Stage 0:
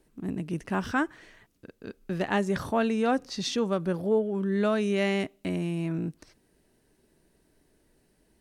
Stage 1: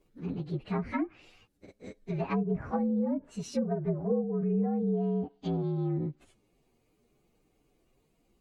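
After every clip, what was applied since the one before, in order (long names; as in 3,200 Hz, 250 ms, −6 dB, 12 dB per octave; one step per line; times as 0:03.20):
partials spread apart or drawn together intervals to 118%
treble cut that deepens with the level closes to 400 Hz, closed at −23.5 dBFS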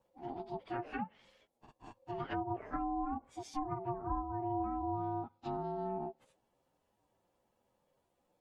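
ring modulation 530 Hz
level −5 dB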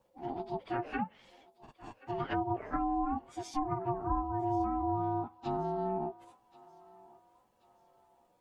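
feedback echo with a high-pass in the loop 1,081 ms, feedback 46%, high-pass 700 Hz, level −19 dB
level +4.5 dB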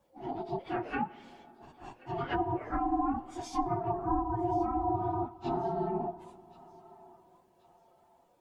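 random phases in long frames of 50 ms
on a send at −18.5 dB: convolution reverb RT60 3.8 s, pre-delay 15 ms
on the sum: level +1.5 dB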